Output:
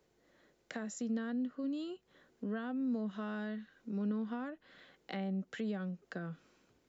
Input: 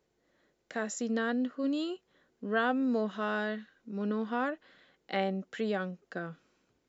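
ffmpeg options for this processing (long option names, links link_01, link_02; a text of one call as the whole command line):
ffmpeg -i in.wav -filter_complex "[0:a]acrossover=split=200[link_01][link_02];[link_02]acompressor=threshold=-46dB:ratio=6[link_03];[link_01][link_03]amix=inputs=2:normalize=0,volume=3dB" out.wav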